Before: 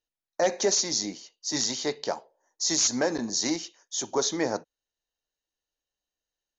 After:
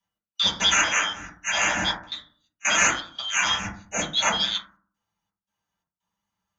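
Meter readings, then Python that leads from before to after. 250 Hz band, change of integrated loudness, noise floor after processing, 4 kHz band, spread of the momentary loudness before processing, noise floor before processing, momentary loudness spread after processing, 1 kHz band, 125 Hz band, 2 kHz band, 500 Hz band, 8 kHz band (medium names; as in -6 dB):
-6.0 dB, +4.5 dB, under -85 dBFS, +7.5 dB, 12 LU, under -85 dBFS, 12 LU, +8.0 dB, +3.0 dB, +14.5 dB, -7.5 dB, +1.0 dB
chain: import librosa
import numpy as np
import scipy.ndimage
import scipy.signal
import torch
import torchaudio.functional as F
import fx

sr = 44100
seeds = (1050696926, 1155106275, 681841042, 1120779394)

y = fx.band_shuffle(x, sr, order='3412')
y = fx.step_gate(y, sr, bpm=85, pattern='x.xxxxxxxxx.xx.x', floor_db=-24.0, edge_ms=4.5)
y = fx.rev_fdn(y, sr, rt60_s=0.47, lf_ratio=1.4, hf_ratio=0.25, size_ms=30.0, drr_db=-9.0)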